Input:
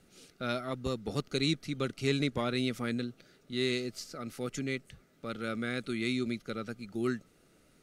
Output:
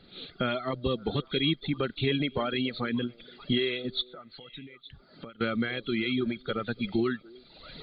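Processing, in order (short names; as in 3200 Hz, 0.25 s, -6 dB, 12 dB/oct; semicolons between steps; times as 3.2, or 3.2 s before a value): nonlinear frequency compression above 3100 Hz 4:1; recorder AGC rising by 24 dB/s; in parallel at -0.5 dB: limiter -24.5 dBFS, peak gain reduction 9.5 dB; 4.01–5.41 on the sum: compressor 6:1, threshold -42 dBFS, peak gain reduction 18.5 dB; on a send: delay with a stepping band-pass 0.288 s, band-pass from 420 Hz, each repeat 1.4 oct, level -11 dB; on the sum: reverb removal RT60 1.9 s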